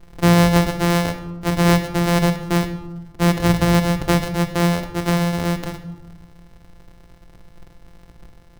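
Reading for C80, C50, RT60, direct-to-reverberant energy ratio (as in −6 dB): 12.5 dB, 10.5 dB, 1.1 s, 7.0 dB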